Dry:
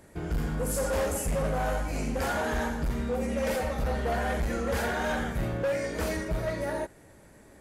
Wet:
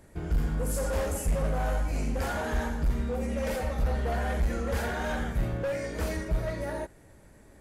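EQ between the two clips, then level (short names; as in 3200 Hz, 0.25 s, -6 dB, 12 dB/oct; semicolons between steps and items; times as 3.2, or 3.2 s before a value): low shelf 88 Hz +9.5 dB; -3.0 dB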